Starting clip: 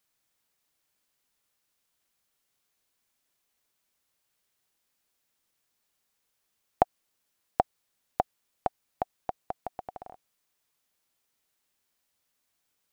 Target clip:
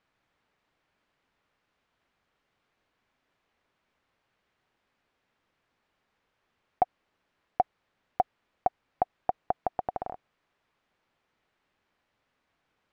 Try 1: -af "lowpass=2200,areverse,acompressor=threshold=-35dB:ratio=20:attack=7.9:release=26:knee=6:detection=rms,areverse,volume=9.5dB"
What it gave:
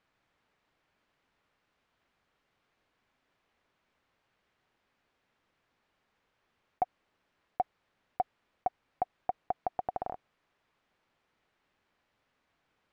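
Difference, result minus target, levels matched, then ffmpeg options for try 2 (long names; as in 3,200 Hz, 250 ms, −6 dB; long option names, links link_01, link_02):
downward compressor: peak gain reduction +6.5 dB
-af "lowpass=2200,areverse,acompressor=threshold=-28dB:ratio=20:attack=7.9:release=26:knee=6:detection=rms,areverse,volume=9.5dB"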